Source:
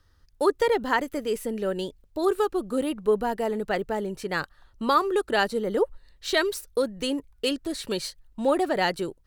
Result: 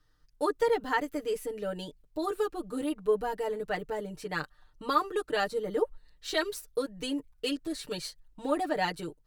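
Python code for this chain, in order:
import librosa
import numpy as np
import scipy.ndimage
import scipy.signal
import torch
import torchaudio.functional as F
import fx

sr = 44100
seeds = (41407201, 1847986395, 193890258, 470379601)

y = x + 0.99 * np.pad(x, (int(6.6 * sr / 1000.0), 0))[:len(x)]
y = y * librosa.db_to_amplitude(-8.5)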